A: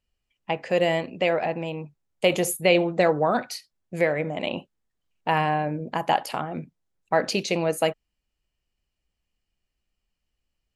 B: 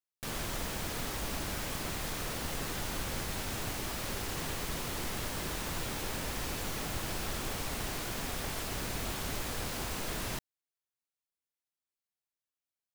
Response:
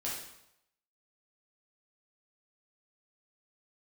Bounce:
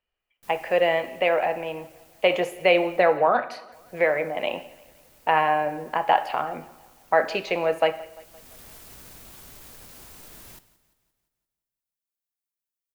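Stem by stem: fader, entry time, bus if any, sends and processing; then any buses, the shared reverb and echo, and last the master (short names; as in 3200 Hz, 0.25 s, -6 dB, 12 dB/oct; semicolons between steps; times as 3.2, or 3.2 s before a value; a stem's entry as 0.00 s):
+2.5 dB, 0.00 s, send -12.5 dB, echo send -21.5 dB, three-band isolator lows -15 dB, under 430 Hz, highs -22 dB, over 3100 Hz
-6.5 dB, 0.20 s, muted 3–3.72, send -16 dB, echo send -17.5 dB, high shelf 8300 Hz +11.5 dB; limiter -31 dBFS, peak gain reduction 10.5 dB; auto duck -20 dB, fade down 1.35 s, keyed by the first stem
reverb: on, RT60 0.80 s, pre-delay 5 ms
echo: feedback echo 0.173 s, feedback 53%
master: dry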